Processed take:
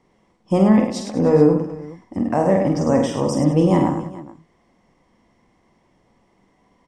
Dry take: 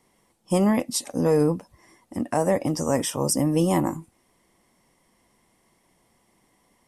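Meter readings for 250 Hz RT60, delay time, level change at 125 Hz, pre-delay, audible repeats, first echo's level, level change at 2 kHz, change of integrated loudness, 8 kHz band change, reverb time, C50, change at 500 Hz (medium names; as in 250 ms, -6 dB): no reverb, 47 ms, +6.0 dB, no reverb, 5, -5.0 dB, +2.5 dB, +5.5 dB, -8.0 dB, no reverb, no reverb, +6.0 dB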